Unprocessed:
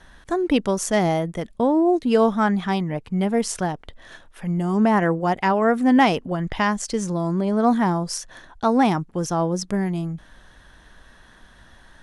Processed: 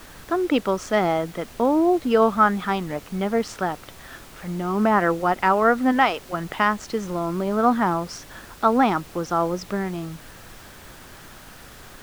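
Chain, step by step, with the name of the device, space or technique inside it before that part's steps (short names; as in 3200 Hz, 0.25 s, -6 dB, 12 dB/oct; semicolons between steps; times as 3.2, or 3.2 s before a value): 5.91–6.32 HPF 420 Hz -> 1300 Hz 6 dB/oct; horn gramophone (BPF 230–4000 Hz; bell 1300 Hz +9.5 dB 0.32 oct; wow and flutter 27 cents; pink noise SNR 21 dB)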